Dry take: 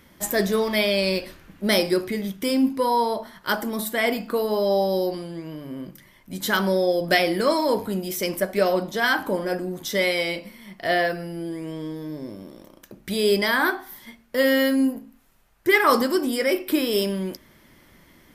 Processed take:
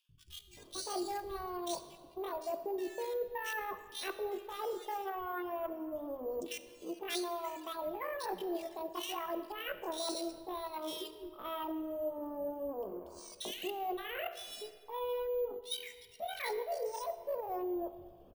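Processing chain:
adaptive Wiener filter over 41 samples
reverb reduction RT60 1.1 s
pitch shifter +10.5 semitones
reversed playback
downward compressor 6 to 1, threshold −36 dBFS, peak gain reduction 20 dB
reversed playback
dynamic equaliser 1,100 Hz, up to −6 dB, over −52 dBFS, Q 1.3
three-band delay without the direct sound highs, lows, mids 90/570 ms, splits 150/2,700 Hz
on a send at −11.5 dB: convolution reverb RT60 1.9 s, pre-delay 10 ms
on the sum: bad sample-rate conversion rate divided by 3×, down filtered, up hold
level +2 dB

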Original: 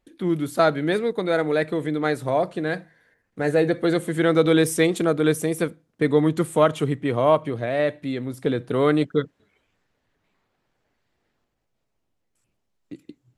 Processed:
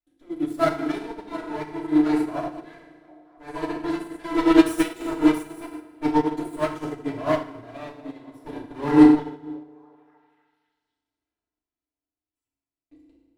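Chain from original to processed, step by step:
lower of the sound and its delayed copy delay 3 ms
on a send: echo through a band-pass that steps 244 ms, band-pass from 220 Hz, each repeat 0.7 octaves, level −6.5 dB
on the sum: feedback delay network reverb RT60 1.4 s, low-frequency decay 1.3×, high-frequency decay 0.8×, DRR −4.5 dB
expander for the loud parts 2.5 to 1, over −22 dBFS

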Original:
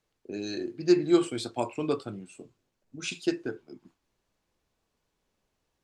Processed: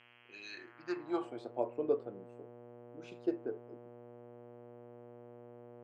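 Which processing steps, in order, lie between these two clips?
hum with harmonics 120 Hz, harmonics 27, −42 dBFS −7 dB per octave
band-pass filter sweep 2,700 Hz → 500 Hz, 0:00.38–0:01.53

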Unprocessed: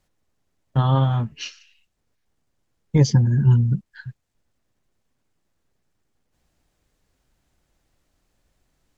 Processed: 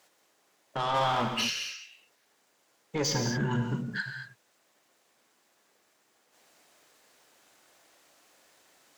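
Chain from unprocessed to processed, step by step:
high-pass filter 480 Hz 12 dB per octave
in parallel at +2 dB: compressor whose output falls as the input rises −39 dBFS, ratio −1
0:00.94–0:01.41: on the sum: leveller curve on the samples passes 1
soft clipping −24 dBFS, distortion −11 dB
reverb whose tail is shaped and stops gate 260 ms flat, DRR 3 dB

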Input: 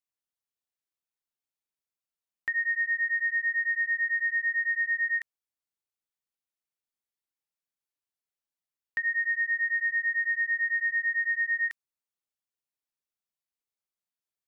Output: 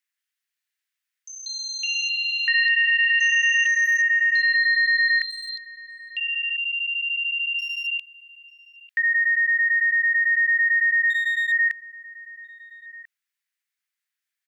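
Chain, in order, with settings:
0:11.10–0:11.52: lower of the sound and its delayed copy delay 3.1 ms
brickwall limiter −32 dBFS, peak gain reduction 11 dB
high-pass with resonance 1,800 Hz, resonance Q 3
slap from a distant wall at 230 metres, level −14 dB
delay with pitch and tempo change per echo 179 ms, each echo +7 semitones, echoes 3, each echo −6 dB
level +6 dB

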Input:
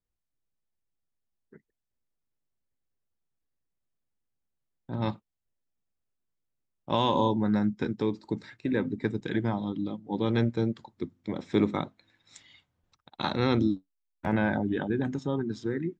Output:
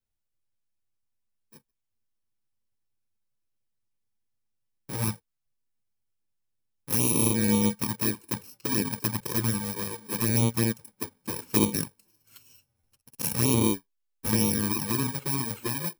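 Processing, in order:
samples in bit-reversed order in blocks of 64 samples
flanger swept by the level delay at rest 9.1 ms, full sweep at −21 dBFS
level +4 dB

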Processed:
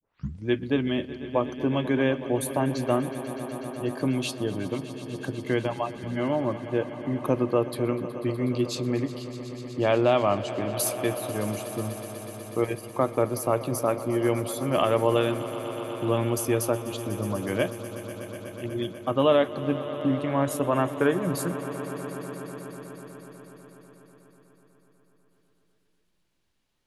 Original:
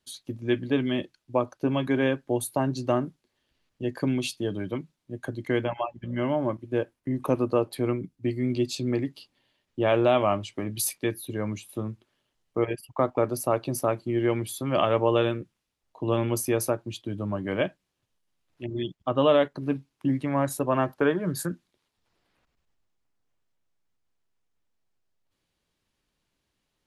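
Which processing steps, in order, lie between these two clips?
turntable start at the beginning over 0.46 s
on a send: echo that builds up and dies away 123 ms, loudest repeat 5, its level −17 dB

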